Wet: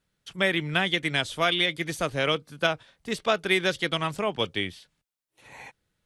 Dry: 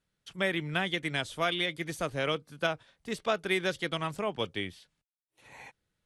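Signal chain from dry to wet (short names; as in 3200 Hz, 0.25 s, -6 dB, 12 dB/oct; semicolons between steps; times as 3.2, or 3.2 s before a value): dynamic EQ 3600 Hz, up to +3 dB, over -45 dBFS, Q 0.72; gain +4.5 dB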